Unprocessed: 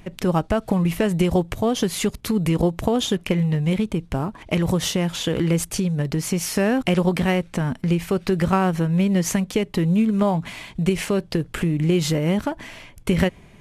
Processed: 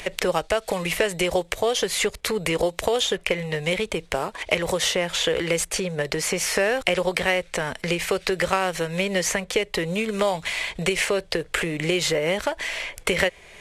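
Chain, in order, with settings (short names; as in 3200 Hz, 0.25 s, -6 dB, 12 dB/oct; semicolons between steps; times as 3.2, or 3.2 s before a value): graphic EQ 125/250/500/2000/4000/8000 Hz -11/-12/+9/+8/+5/+7 dB; three-band squash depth 70%; gain -3 dB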